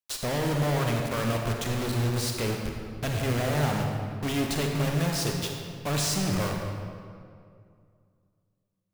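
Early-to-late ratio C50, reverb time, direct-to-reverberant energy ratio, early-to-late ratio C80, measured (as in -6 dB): 2.0 dB, 2.3 s, 1.5 dB, 3.5 dB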